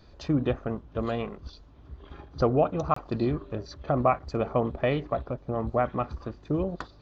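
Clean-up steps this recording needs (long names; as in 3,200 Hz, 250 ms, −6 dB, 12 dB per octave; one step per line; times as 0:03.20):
repair the gap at 0:02.94, 24 ms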